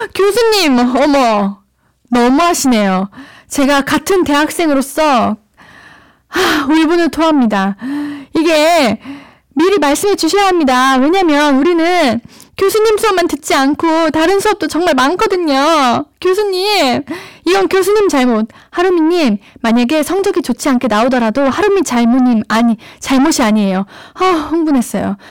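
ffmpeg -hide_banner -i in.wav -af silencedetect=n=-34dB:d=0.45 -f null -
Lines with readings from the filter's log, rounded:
silence_start: 1.55
silence_end: 2.11 | silence_duration: 0.56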